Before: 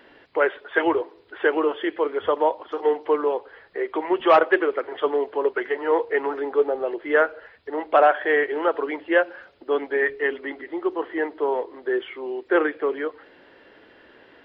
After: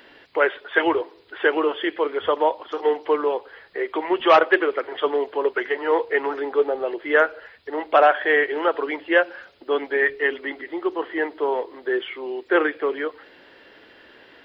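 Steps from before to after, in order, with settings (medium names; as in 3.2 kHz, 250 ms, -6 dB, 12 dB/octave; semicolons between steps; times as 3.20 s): treble shelf 2.6 kHz +10 dB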